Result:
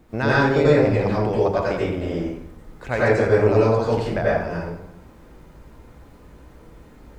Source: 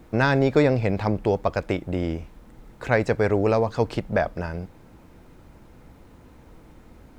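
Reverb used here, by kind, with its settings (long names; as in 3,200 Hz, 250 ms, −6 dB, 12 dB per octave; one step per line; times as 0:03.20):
dense smooth reverb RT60 0.73 s, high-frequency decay 0.7×, pre-delay 75 ms, DRR −7 dB
level −4.5 dB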